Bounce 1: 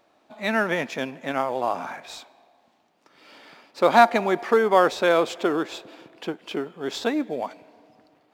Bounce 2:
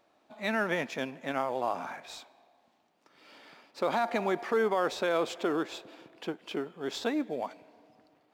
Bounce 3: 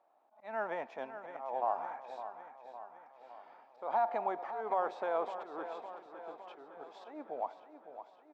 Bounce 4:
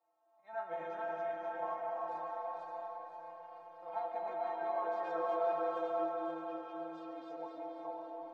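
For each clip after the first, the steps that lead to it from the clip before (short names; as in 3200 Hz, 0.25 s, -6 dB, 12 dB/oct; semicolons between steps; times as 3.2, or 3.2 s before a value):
limiter -13 dBFS, peak gain reduction 11.5 dB; gain -5.5 dB
auto swell 0.197 s; band-pass 810 Hz, Q 2.6; on a send: feedback echo 0.559 s, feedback 59%, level -11 dB; on the sum: gain +1.5 dB
regenerating reverse delay 0.264 s, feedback 54%, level 0 dB; metallic resonator 160 Hz, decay 0.37 s, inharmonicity 0.008; reverb RT60 4.4 s, pre-delay 85 ms, DRR 0 dB; gain +4.5 dB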